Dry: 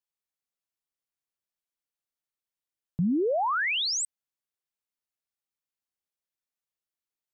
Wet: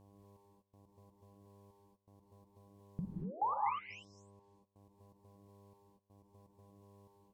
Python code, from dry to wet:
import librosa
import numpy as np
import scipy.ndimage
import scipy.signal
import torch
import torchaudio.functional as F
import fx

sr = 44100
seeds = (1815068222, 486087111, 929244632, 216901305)

y = fx.env_lowpass_down(x, sr, base_hz=390.0, full_db=-26.5)
y = fx.over_compress(y, sr, threshold_db=-32.0, ratio=-0.5)
y = fx.dmg_buzz(y, sr, base_hz=100.0, harmonics=11, level_db=-66.0, tilt_db=-5, odd_only=False)
y = fx.step_gate(y, sr, bpm=123, pattern='xxx...x.x.x', floor_db=-24.0, edge_ms=4.5)
y = fx.rev_gated(y, sr, seeds[0], gate_ms=270, shape='rising', drr_db=-1.5)
y = y * librosa.db_to_amplitude(3.0)